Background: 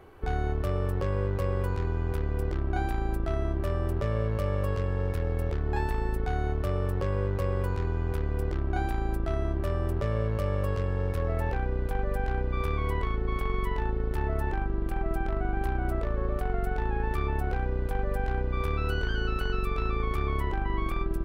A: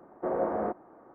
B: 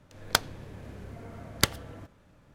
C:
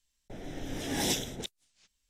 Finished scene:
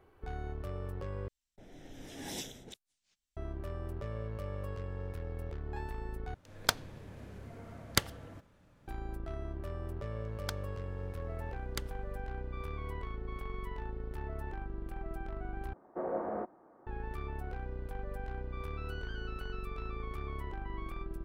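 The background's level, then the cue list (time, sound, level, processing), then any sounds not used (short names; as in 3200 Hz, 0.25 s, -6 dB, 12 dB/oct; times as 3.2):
background -11.5 dB
1.28 replace with C -11.5 dB
6.34 replace with B -4.5 dB
10.14 add B -17 dB
15.73 replace with A -6.5 dB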